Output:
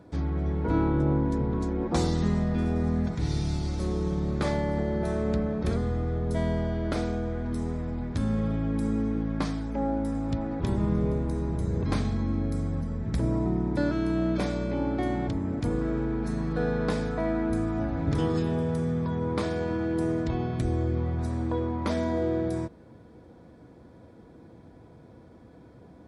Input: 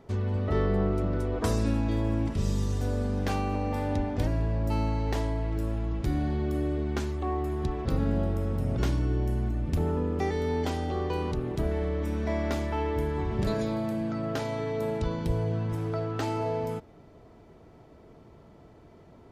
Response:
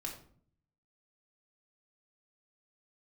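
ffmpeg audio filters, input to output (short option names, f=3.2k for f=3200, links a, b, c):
-af "highpass=100,equalizer=f=3.8k:t=o:w=0.21:g=-11.5,asetrate=32667,aresample=44100,volume=3dB"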